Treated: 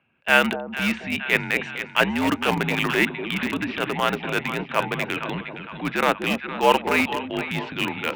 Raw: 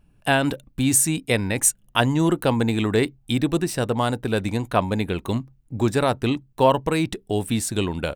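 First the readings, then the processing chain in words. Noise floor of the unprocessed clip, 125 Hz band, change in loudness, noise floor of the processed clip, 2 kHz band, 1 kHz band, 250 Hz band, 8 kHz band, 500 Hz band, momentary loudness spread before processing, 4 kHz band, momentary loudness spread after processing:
−59 dBFS, −8.5 dB, −1.0 dB, −40 dBFS, +7.0 dB, +1.5 dB, −4.0 dB, −16.0 dB, −2.5 dB, 7 LU, +2.0 dB, 8 LU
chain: low-shelf EQ 380 Hz +2 dB
on a send: echo with a time of its own for lows and highs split 960 Hz, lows 243 ms, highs 462 ms, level −10 dB
on the sum: single-sideband voice off tune −63 Hz 230–2,800 Hz
tilt shelving filter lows −9.5 dB, about 1,400 Hz
transient designer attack −8 dB, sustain +1 dB
in parallel at −11.5 dB: bit reduction 4 bits
on the sum: level +5.5 dB

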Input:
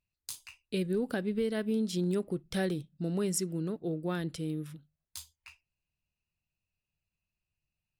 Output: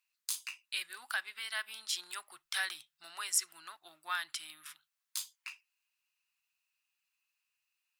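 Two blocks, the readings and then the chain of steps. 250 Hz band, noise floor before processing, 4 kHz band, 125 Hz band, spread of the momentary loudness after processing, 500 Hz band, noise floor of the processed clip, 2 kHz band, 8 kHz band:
below −35 dB, below −85 dBFS, +6.0 dB, below −40 dB, 18 LU, −27.5 dB, below −85 dBFS, +6.5 dB, +4.0 dB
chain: inverse Chebyshev high-pass filter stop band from 510 Hz, stop band 40 dB
in parallel at +2.5 dB: brickwall limiter −30.5 dBFS, peak gain reduction 11 dB

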